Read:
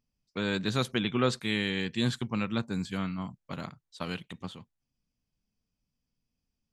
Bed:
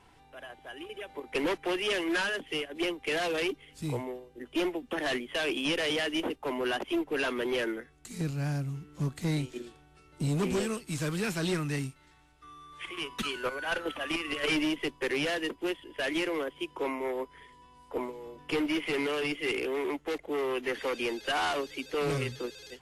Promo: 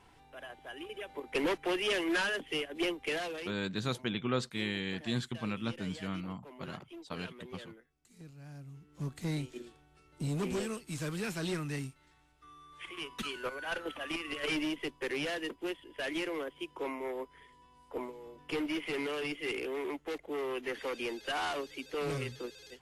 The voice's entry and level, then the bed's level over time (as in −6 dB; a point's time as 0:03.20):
3.10 s, −5.5 dB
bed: 0:03.04 −1.5 dB
0:03.69 −19 dB
0:08.43 −19 dB
0:09.12 −5 dB